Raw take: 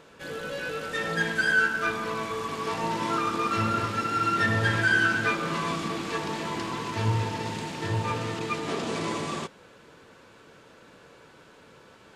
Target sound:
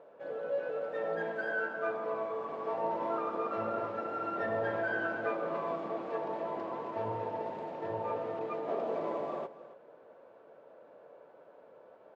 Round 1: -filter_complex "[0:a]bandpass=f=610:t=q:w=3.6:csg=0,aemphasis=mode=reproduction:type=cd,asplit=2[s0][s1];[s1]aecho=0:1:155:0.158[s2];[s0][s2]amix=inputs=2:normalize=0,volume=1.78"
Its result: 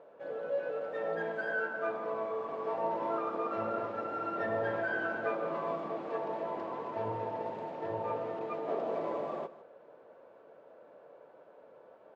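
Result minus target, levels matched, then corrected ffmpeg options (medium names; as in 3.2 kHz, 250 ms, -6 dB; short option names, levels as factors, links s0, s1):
echo 119 ms early
-filter_complex "[0:a]bandpass=f=610:t=q:w=3.6:csg=0,aemphasis=mode=reproduction:type=cd,asplit=2[s0][s1];[s1]aecho=0:1:274:0.158[s2];[s0][s2]amix=inputs=2:normalize=0,volume=1.78"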